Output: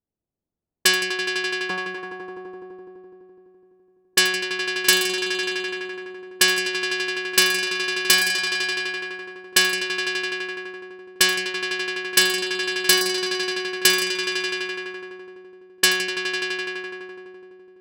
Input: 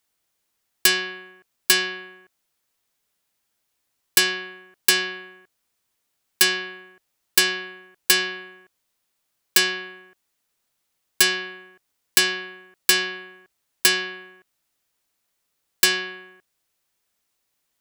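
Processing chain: 1.1–1.98 elliptic low-pass 1300 Hz; on a send: swelling echo 84 ms, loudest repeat 5, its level -9.5 dB; on the sum: low-pass opened by the level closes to 360 Hz, open at -16 dBFS; gain +1.5 dB

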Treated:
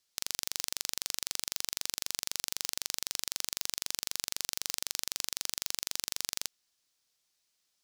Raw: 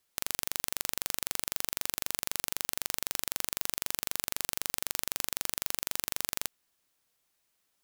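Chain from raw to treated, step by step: bell 5100 Hz +11.5 dB 1.6 oct; gain -7 dB

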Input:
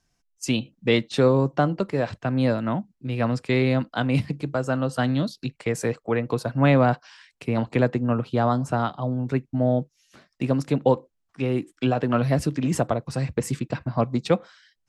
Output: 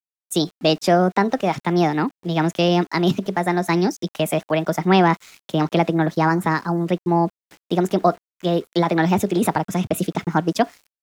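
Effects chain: in parallel at -3 dB: limiter -14.5 dBFS, peak gain reduction 7.5 dB; on the sum: sample gate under -43 dBFS; speed mistake 33 rpm record played at 45 rpm

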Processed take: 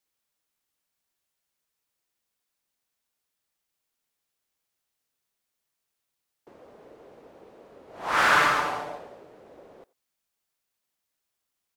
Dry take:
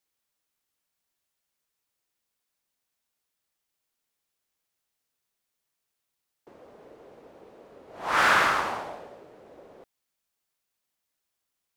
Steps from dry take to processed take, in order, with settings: 8.32–8.98 comb 6.8 ms, depth 61%; speakerphone echo 90 ms, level -22 dB

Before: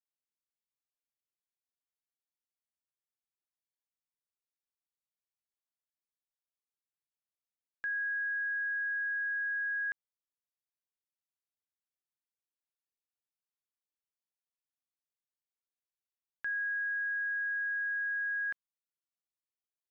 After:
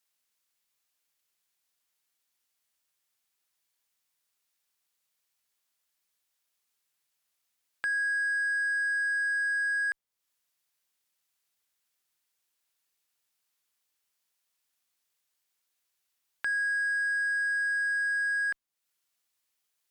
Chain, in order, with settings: added harmonics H 3 -23 dB, 5 -24 dB, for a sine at -30.5 dBFS; mismatched tape noise reduction encoder only; gain +5.5 dB

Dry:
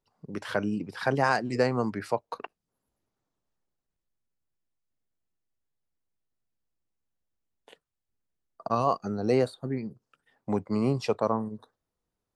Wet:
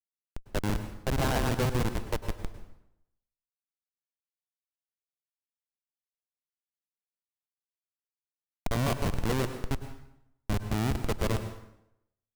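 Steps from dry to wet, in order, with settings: notch 2200 Hz, Q 5; on a send: thinning echo 0.151 s, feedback 31%, high-pass 840 Hz, level -3.5 dB; on the sum: Schmitt trigger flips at -23 dBFS; plate-style reverb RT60 0.8 s, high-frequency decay 0.8×, pre-delay 90 ms, DRR 9 dB; gain +5.5 dB

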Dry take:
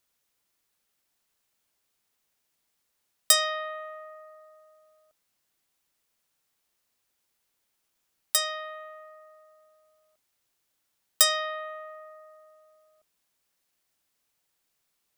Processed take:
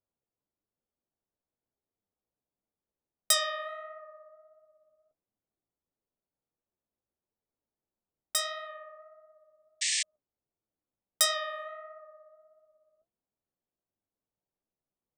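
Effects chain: flange 1.5 Hz, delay 8.8 ms, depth 9 ms, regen +40%; low-pass opened by the level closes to 590 Hz, open at -33 dBFS; painted sound noise, 9.81–10.03, 1700–8900 Hz -29 dBFS

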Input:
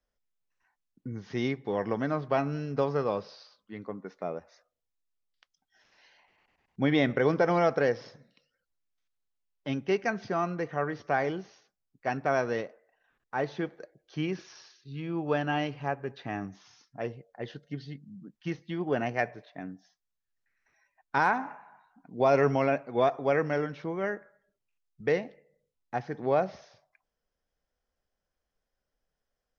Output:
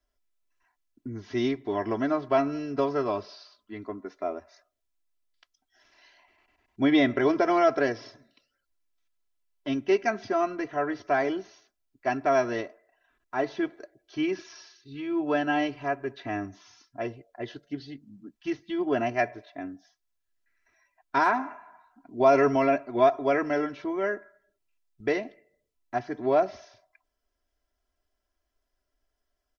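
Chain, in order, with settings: comb 3 ms, depth 99%

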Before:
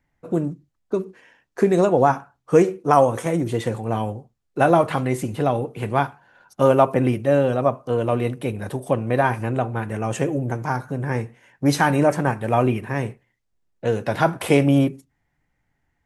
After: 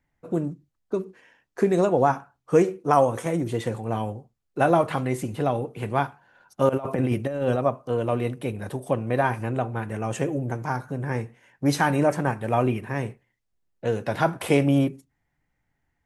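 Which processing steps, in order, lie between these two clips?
6.69–7.56 negative-ratio compressor -20 dBFS, ratio -0.5; gain -3.5 dB

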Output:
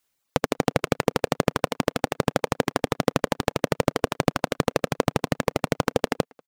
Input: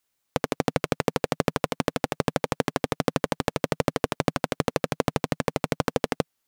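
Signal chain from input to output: speakerphone echo 0.19 s, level -15 dB; reverb removal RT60 2 s; gain +3 dB

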